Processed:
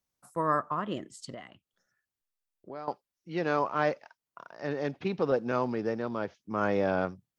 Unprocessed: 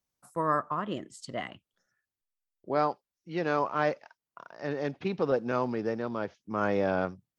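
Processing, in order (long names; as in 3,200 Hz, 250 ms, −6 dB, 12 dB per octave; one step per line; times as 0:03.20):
0:01.34–0:02.88: downward compressor 2 to 1, threshold −50 dBFS, peak gain reduction 15.5 dB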